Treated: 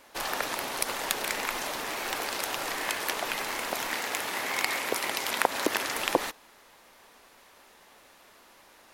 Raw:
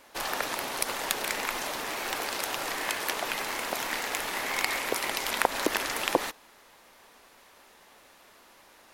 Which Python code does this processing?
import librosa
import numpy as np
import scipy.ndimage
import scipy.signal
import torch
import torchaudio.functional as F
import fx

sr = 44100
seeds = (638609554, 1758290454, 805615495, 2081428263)

y = fx.highpass(x, sr, hz=86.0, slope=12, at=(3.93, 5.95))